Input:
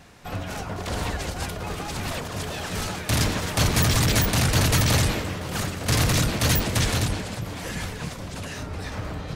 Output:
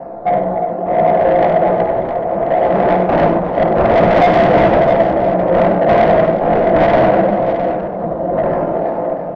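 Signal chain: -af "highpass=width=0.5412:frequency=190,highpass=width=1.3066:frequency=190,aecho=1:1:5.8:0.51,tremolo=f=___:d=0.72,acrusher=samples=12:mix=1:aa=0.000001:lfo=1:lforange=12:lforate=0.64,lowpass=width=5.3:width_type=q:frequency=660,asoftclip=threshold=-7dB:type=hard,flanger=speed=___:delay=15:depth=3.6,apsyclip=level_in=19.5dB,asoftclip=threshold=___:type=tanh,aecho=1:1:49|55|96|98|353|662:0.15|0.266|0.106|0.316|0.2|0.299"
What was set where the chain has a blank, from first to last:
0.7, 0.41, -8dB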